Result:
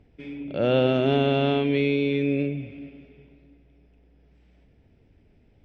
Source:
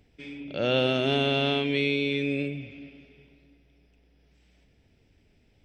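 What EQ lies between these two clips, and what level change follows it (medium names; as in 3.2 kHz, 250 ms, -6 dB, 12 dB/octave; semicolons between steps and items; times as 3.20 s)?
low-pass 1.1 kHz 6 dB/octave; +5.0 dB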